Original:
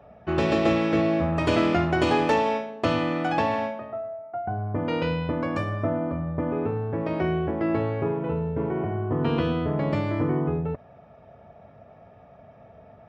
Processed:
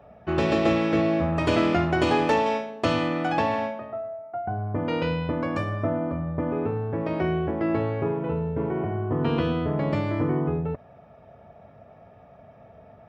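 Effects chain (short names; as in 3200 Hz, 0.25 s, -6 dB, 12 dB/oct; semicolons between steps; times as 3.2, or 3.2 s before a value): 2.46–3.08 high shelf 5000 Hz +6.5 dB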